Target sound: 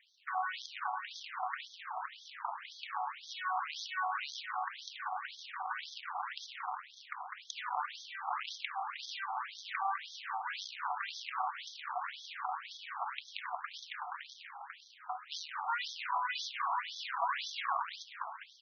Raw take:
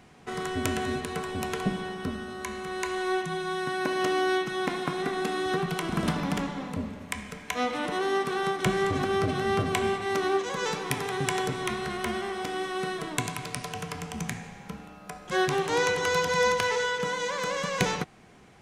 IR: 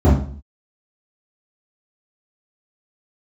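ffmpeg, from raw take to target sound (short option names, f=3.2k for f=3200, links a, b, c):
-filter_complex "[0:a]acrusher=samples=15:mix=1:aa=0.000001:lfo=1:lforange=24:lforate=1.7,asplit=8[a][b][c][d][e][f][g][h];[b]adelay=202,afreqshift=110,volume=-12.5dB[i];[c]adelay=404,afreqshift=220,volume=-17.1dB[j];[d]adelay=606,afreqshift=330,volume=-21.7dB[k];[e]adelay=808,afreqshift=440,volume=-26.2dB[l];[f]adelay=1010,afreqshift=550,volume=-30.8dB[m];[g]adelay=1212,afreqshift=660,volume=-35.4dB[n];[h]adelay=1414,afreqshift=770,volume=-40dB[o];[a][i][j][k][l][m][n][o]amix=inputs=8:normalize=0,acompressor=threshold=-31dB:ratio=6,equalizer=f=530:t=o:w=0.93:g=11,aeval=exprs='0.266*(cos(1*acos(clip(val(0)/0.266,-1,1)))-cos(1*PI/2))+0.0473*(cos(8*acos(clip(val(0)/0.266,-1,1)))-cos(8*PI/2))':c=same,asplit=2[p][q];[1:a]atrim=start_sample=2205,adelay=29[r];[q][r]afir=irnorm=-1:irlink=0,volume=-39.5dB[s];[p][s]amix=inputs=2:normalize=0,afftfilt=real='re*between(b*sr/1024,960*pow(4600/960,0.5+0.5*sin(2*PI*1.9*pts/sr))/1.41,960*pow(4600/960,0.5+0.5*sin(2*PI*1.9*pts/sr))*1.41)':imag='im*between(b*sr/1024,960*pow(4600/960,0.5+0.5*sin(2*PI*1.9*pts/sr))/1.41,960*pow(4600/960,0.5+0.5*sin(2*PI*1.9*pts/sr))*1.41)':win_size=1024:overlap=0.75"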